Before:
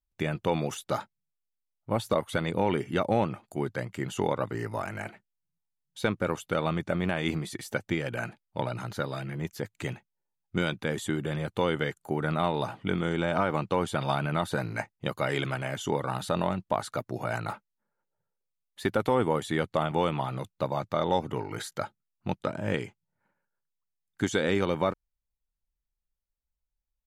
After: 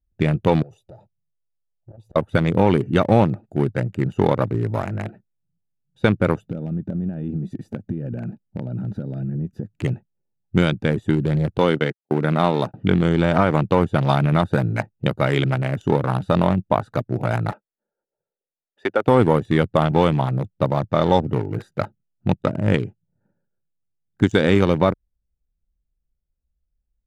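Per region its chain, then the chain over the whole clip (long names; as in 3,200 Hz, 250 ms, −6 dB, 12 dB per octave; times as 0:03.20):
0:00.62–0:02.16: downward compressor 8 to 1, threshold −39 dBFS + phaser with its sweep stopped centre 620 Hz, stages 4 + saturating transformer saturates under 1,300 Hz
0:06.41–0:09.74: parametric band 210 Hz +9.5 dB 1.1 octaves + downward compressor 4 to 1, threshold −36 dBFS
0:11.58–0:12.74: noise gate −34 dBFS, range −44 dB + high-pass filter 160 Hz + one half of a high-frequency compander decoder only
0:17.52–0:19.07: three-way crossover with the lows and the highs turned down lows −24 dB, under 340 Hz, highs −13 dB, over 6,500 Hz + notch filter 4,000 Hz, Q 7.7
whole clip: adaptive Wiener filter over 41 samples; parametric band 86 Hz +6 dB 3 octaves; level +8.5 dB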